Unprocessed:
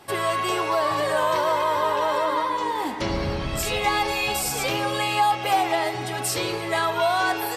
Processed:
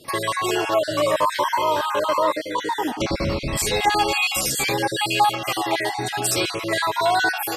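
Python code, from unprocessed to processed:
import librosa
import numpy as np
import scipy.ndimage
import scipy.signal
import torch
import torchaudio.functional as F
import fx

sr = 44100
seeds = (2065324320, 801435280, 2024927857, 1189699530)

y = fx.spec_dropout(x, sr, seeds[0], share_pct=33)
y = fx.low_shelf(y, sr, hz=130.0, db=-6.5)
y = fx.notch_cascade(y, sr, direction='falling', hz=0.9)
y = F.gain(torch.from_numpy(y), 6.5).numpy()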